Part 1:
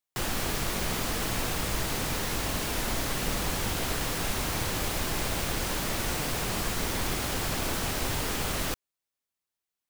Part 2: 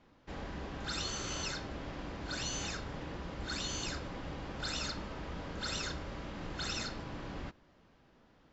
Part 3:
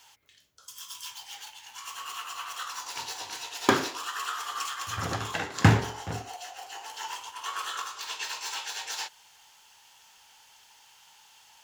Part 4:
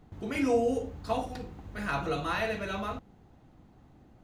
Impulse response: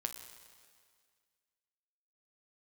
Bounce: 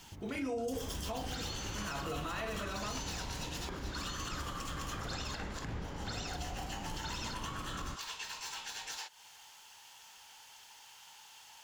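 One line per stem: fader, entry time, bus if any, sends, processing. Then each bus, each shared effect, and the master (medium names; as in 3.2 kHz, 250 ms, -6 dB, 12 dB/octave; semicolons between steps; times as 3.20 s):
mute
-4.0 dB, 0.45 s, no send, bass shelf 190 Hz +6.5 dB
+1.0 dB, 0.00 s, no send, compression 8:1, threshold -41 dBFS, peak gain reduction 26.5 dB
-4.5 dB, 0.00 s, no send, none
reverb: none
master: peak limiter -29.5 dBFS, peak gain reduction 9.5 dB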